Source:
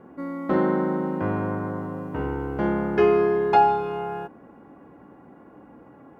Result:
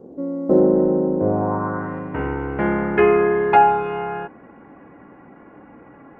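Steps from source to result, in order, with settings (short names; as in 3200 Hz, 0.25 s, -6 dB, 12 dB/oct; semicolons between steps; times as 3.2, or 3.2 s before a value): treble ducked by the level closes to 2900 Hz, closed at -16 dBFS; 0.76–1.99 high shelf 2100 Hz +6.5 dB; low-pass sweep 500 Hz -> 2200 Hz, 1.22–1.98; gain +3 dB; Opus 24 kbps 48000 Hz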